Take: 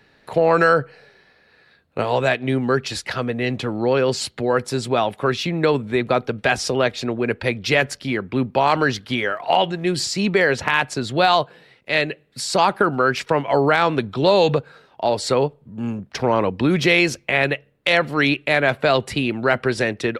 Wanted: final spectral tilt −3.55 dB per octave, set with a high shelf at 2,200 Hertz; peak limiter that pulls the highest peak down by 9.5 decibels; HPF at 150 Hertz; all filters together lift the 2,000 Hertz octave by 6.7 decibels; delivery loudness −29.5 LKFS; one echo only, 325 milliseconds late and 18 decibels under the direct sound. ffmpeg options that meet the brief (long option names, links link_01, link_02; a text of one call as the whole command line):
ffmpeg -i in.wav -af "highpass=150,equalizer=frequency=2000:width_type=o:gain=6.5,highshelf=frequency=2200:gain=3.5,alimiter=limit=-7dB:level=0:latency=1,aecho=1:1:325:0.126,volume=-10dB" out.wav